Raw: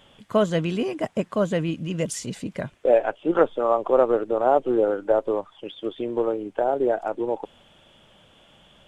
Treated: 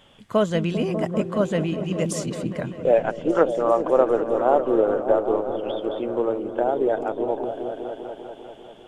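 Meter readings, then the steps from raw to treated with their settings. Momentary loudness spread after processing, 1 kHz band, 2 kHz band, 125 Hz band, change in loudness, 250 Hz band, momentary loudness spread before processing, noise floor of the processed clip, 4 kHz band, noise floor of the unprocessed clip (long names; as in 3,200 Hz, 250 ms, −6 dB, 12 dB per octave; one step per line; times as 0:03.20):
11 LU, +0.5 dB, +0.5 dB, +2.5 dB, +1.0 dB, +2.0 dB, 11 LU, −45 dBFS, can't be measured, −56 dBFS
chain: echo whose low-pass opens from repeat to repeat 198 ms, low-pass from 200 Hz, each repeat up 1 octave, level −3 dB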